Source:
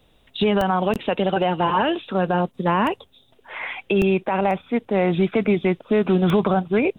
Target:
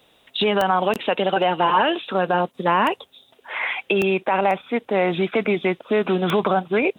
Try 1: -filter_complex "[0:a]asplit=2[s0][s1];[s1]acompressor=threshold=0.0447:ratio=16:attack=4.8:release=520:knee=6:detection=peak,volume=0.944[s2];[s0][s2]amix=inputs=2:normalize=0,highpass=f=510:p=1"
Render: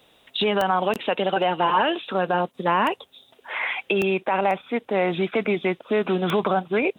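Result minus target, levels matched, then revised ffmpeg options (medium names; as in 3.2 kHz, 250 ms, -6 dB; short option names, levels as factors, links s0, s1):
compression: peak gain reduction +9.5 dB
-filter_complex "[0:a]asplit=2[s0][s1];[s1]acompressor=threshold=0.141:ratio=16:attack=4.8:release=520:knee=6:detection=peak,volume=0.944[s2];[s0][s2]amix=inputs=2:normalize=0,highpass=f=510:p=1"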